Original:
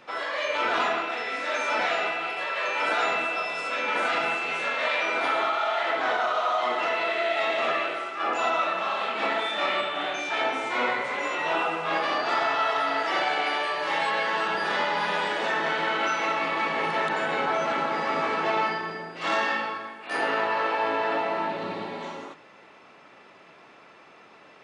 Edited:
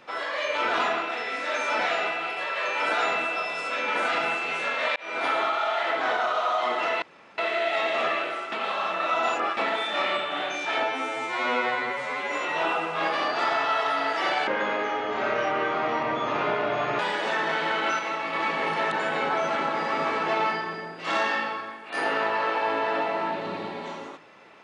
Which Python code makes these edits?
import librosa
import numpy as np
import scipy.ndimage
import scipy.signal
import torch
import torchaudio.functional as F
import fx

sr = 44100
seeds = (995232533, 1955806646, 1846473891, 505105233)

y = fx.edit(x, sr, fx.fade_in_span(start_s=4.96, length_s=0.3),
    fx.insert_room_tone(at_s=7.02, length_s=0.36),
    fx.reverse_span(start_s=8.16, length_s=1.05),
    fx.stretch_span(start_s=10.47, length_s=0.74, factor=2.0),
    fx.speed_span(start_s=13.37, length_s=1.79, speed=0.71),
    fx.clip_gain(start_s=16.16, length_s=0.34, db=-3.5), tone=tone)